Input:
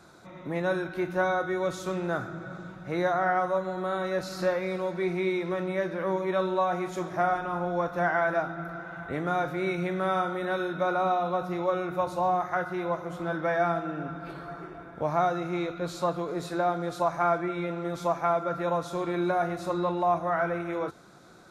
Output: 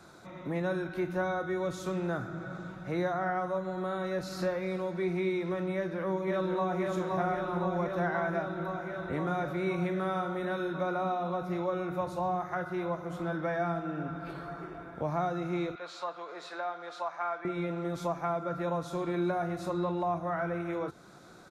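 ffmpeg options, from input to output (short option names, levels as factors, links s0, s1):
-filter_complex "[0:a]asplit=2[s0][s1];[s1]afade=t=in:st=5.75:d=0.01,afade=t=out:st=6.79:d=0.01,aecho=0:1:520|1040|1560|2080|2600|3120|3640|4160|4680|5200|5720|6240:0.668344|0.534675|0.42774|0.342192|0.273754|0.219003|0.175202|0.140162|0.11213|0.0897036|0.0717629|0.0574103[s2];[s0][s2]amix=inputs=2:normalize=0,asettb=1/sr,asplit=3[s3][s4][s5];[s3]atrim=end=15.754[s6];[s4]atrim=start=15.75:end=17.45,asetpts=PTS-STARTPTS,afade=t=in:d=0.004:c=qsin,afade=t=out:st=1.696:d=0.004:c=qsin,highpass=800,lowpass=4400[s7];[s5]atrim=start=17.446[s8];[s6][s7]acrossfade=d=0.004:c1=hsin:c2=qsin[s9];[s9][s8]acrossfade=d=0.004:c1=qsin:c2=hsin,acrossover=split=320[s10][s11];[s11]acompressor=threshold=0.00794:ratio=1.5[s12];[s10][s12]amix=inputs=2:normalize=0"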